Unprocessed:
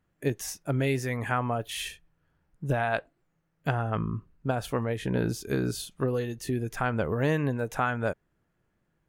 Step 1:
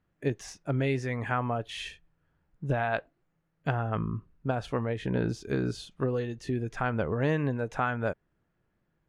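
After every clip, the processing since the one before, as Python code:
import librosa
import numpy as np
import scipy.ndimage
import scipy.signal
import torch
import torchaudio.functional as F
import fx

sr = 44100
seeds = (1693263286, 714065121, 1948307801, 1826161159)

y = fx.air_absorb(x, sr, metres=94.0)
y = F.gain(torch.from_numpy(y), -1.0).numpy()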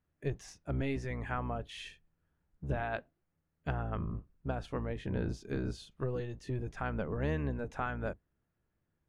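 y = fx.octave_divider(x, sr, octaves=1, level_db=-1.0)
y = F.gain(torch.from_numpy(y), -7.5).numpy()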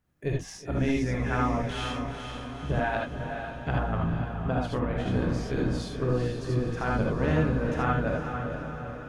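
y = fx.echo_diffused(x, sr, ms=462, feedback_pct=56, wet_db=-6.5)
y = fx.rev_gated(y, sr, seeds[0], gate_ms=100, shape='rising', drr_db=-1.0)
y = F.gain(torch.from_numpy(y), 4.5).numpy()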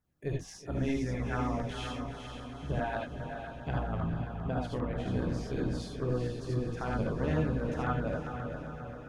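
y = fx.filter_lfo_notch(x, sr, shape='saw_down', hz=7.5, low_hz=940.0, high_hz=3200.0, q=2.0)
y = F.gain(torch.from_numpy(y), -5.0).numpy()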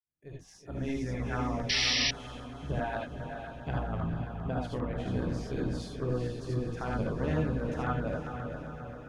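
y = fx.fade_in_head(x, sr, length_s=1.2)
y = fx.spec_paint(y, sr, seeds[1], shape='noise', start_s=1.69, length_s=0.42, low_hz=1700.0, high_hz=5900.0, level_db=-28.0)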